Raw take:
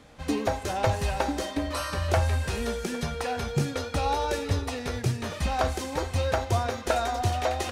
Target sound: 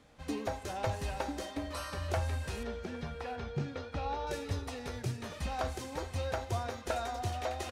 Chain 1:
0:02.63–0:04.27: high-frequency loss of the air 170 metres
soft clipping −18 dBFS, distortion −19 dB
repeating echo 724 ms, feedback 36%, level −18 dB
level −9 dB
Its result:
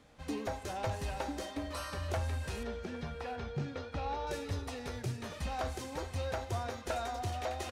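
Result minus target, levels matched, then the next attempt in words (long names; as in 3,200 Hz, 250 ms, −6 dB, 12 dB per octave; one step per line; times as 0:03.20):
soft clipping: distortion +20 dB
0:02.63–0:04.27: high-frequency loss of the air 170 metres
soft clipping −6.5 dBFS, distortion −39 dB
repeating echo 724 ms, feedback 36%, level −18 dB
level −9 dB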